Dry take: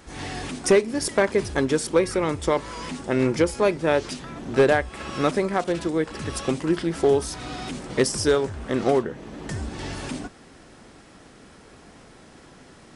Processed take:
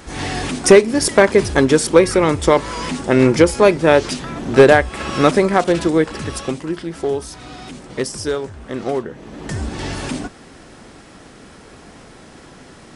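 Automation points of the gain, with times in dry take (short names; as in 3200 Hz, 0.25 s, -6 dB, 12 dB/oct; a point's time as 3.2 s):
5.97 s +9 dB
6.72 s -1.5 dB
8.88 s -1.5 dB
9.65 s +7 dB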